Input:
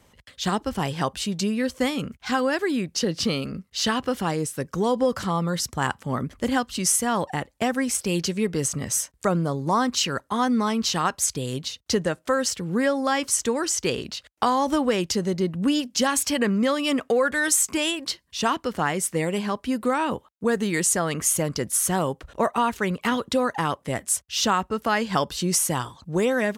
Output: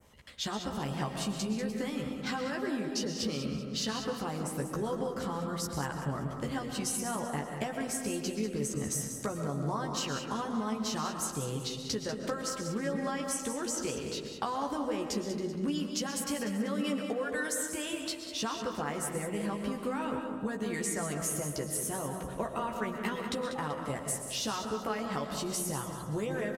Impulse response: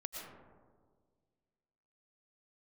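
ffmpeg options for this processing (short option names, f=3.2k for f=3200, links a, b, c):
-filter_complex "[0:a]adynamicequalizer=threshold=0.00891:dfrequency=3800:dqfactor=0.72:tfrequency=3800:tqfactor=0.72:attack=5:release=100:ratio=0.375:range=2.5:mode=cutabove:tftype=bell,acompressor=threshold=-29dB:ratio=6,aecho=1:1:192|384|576|768:0.316|0.126|0.0506|0.0202,asplit=2[a][b];[1:a]atrim=start_sample=2205,adelay=14[c];[b][c]afir=irnorm=-1:irlink=0,volume=0dB[d];[a][d]amix=inputs=2:normalize=0,volume=-4.5dB"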